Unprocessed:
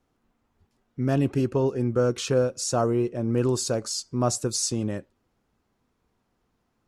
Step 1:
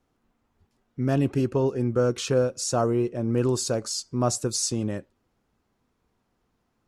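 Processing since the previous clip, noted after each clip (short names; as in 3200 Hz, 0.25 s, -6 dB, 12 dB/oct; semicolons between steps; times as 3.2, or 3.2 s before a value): nothing audible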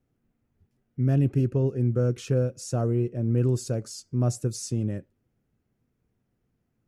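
graphic EQ 125/1000/4000/8000 Hz +8/-11/-8/-5 dB; gain -3 dB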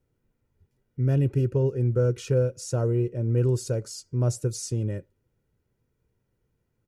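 comb 2.1 ms, depth 47%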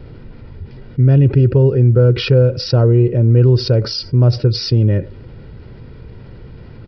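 low shelf 210 Hz +5 dB; downsampling 11025 Hz; fast leveller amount 50%; gain +8.5 dB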